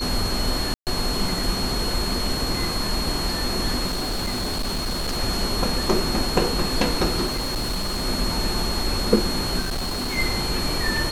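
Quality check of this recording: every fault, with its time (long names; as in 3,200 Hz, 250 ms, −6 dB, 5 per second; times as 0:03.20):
whistle 4,300 Hz −28 dBFS
0:00.74–0:00.87: drop-out 128 ms
0:03.86–0:05.18: clipping −22 dBFS
0:07.25–0:08.06: clipping −21.5 dBFS
0:09.59–0:10.18: clipping −23 dBFS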